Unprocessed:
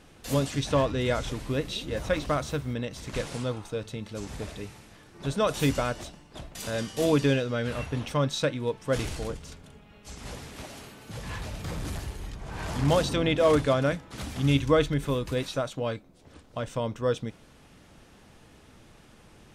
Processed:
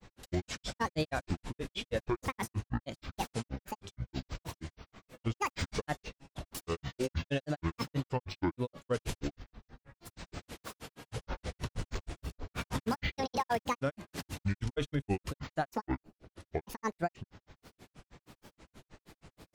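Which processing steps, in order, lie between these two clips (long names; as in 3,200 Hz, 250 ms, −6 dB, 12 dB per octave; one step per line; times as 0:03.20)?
granular cloud 104 ms, grains 6.3 per second, spray 14 ms, pitch spread up and down by 12 semitones
brickwall limiter −23.5 dBFS, peak gain reduction 10.5 dB
level +1.5 dB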